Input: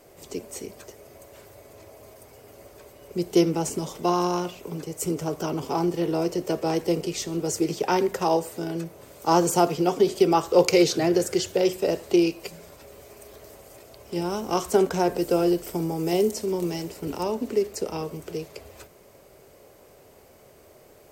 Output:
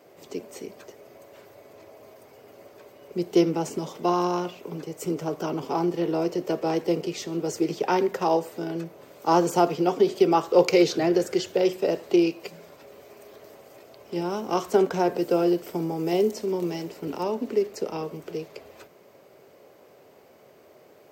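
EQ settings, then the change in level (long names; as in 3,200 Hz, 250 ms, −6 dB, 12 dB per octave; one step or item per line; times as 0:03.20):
high-pass filter 160 Hz 12 dB per octave
parametric band 9,900 Hz −12 dB 1.2 octaves
0.0 dB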